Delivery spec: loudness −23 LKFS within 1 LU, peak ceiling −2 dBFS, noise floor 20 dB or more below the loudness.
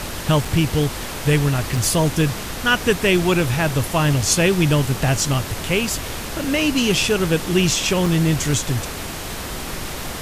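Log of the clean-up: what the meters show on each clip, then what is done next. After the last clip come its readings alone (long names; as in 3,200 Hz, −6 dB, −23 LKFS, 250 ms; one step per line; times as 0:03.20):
number of dropouts 3; longest dropout 4.1 ms; background noise floor −30 dBFS; target noise floor −40 dBFS; integrated loudness −19.5 LKFS; sample peak −3.5 dBFS; target loudness −23.0 LKFS
→ repair the gap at 0:00.45/0:01.77/0:08.06, 4.1 ms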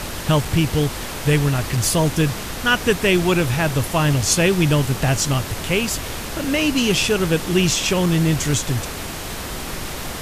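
number of dropouts 0; background noise floor −30 dBFS; target noise floor −40 dBFS
→ noise reduction from a noise print 10 dB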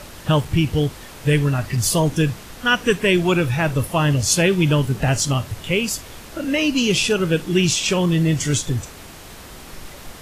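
background noise floor −39 dBFS; target noise floor −40 dBFS
→ noise reduction from a noise print 6 dB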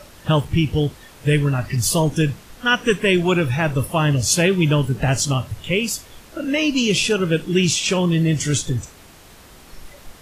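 background noise floor −45 dBFS; integrated loudness −19.5 LKFS; sample peak −4.0 dBFS; target loudness −23.0 LKFS
→ level −3.5 dB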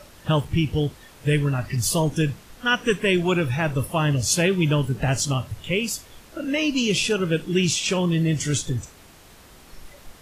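integrated loudness −23.0 LKFS; sample peak −7.5 dBFS; background noise floor −49 dBFS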